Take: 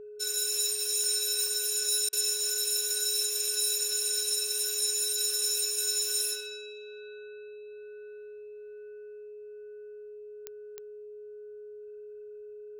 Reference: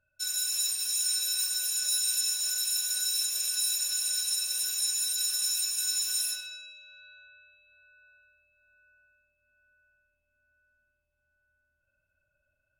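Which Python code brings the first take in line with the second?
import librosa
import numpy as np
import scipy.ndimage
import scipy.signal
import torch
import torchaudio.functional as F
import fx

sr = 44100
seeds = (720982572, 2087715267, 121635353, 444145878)

y = fx.fix_declick_ar(x, sr, threshold=10.0)
y = fx.notch(y, sr, hz=420.0, q=30.0)
y = fx.fix_interpolate(y, sr, at_s=(2.09,), length_ms=37.0)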